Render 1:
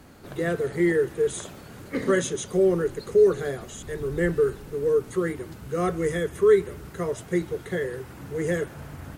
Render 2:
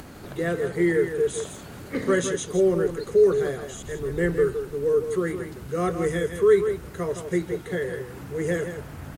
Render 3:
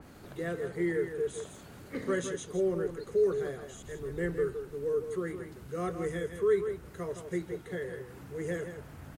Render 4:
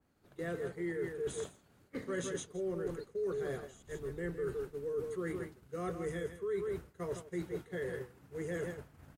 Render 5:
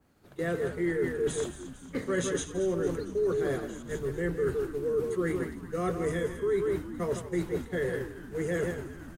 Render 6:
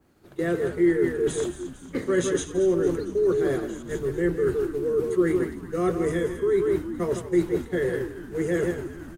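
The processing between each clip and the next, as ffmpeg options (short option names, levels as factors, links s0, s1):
-af "acompressor=mode=upward:threshold=0.0178:ratio=2.5,aecho=1:1:164:0.376"
-af "adynamicequalizer=threshold=0.00794:dfrequency=2700:dqfactor=0.7:tfrequency=2700:tqfactor=0.7:attack=5:release=100:ratio=0.375:range=1.5:mode=cutabove:tftype=highshelf,volume=0.355"
-af "agate=range=0.0224:threshold=0.0158:ratio=3:detection=peak,areverse,acompressor=threshold=0.0112:ratio=5,areverse,volume=1.5"
-filter_complex "[0:a]asplit=7[s0][s1][s2][s3][s4][s5][s6];[s1]adelay=227,afreqshift=-93,volume=0.237[s7];[s2]adelay=454,afreqshift=-186,volume=0.133[s8];[s3]adelay=681,afreqshift=-279,volume=0.0741[s9];[s4]adelay=908,afreqshift=-372,volume=0.0417[s10];[s5]adelay=1135,afreqshift=-465,volume=0.0234[s11];[s6]adelay=1362,afreqshift=-558,volume=0.013[s12];[s0][s7][s8][s9][s10][s11][s12]amix=inputs=7:normalize=0,volume=2.51"
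-af "equalizer=f=350:t=o:w=0.32:g=7.5,volume=1.41"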